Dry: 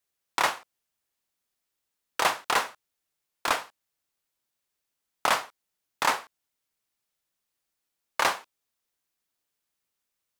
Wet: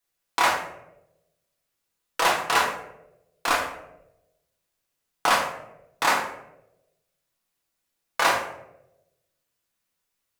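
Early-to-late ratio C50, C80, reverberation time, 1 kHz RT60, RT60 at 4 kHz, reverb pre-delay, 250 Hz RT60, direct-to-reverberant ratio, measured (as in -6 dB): 6.0 dB, 9.0 dB, 0.90 s, 0.70 s, 0.45 s, 4 ms, 1.0 s, -2.5 dB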